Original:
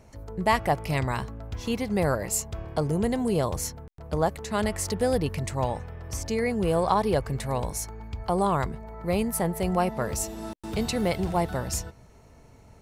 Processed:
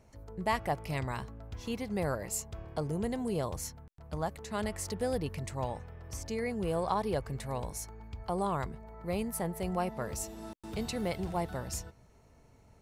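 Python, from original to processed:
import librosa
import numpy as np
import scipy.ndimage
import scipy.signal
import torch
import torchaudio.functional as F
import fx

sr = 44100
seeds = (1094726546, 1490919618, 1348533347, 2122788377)

y = fx.peak_eq(x, sr, hz=430.0, db=-6.5, octaves=0.82, at=(3.56, 4.29))
y = y * librosa.db_to_amplitude(-8.0)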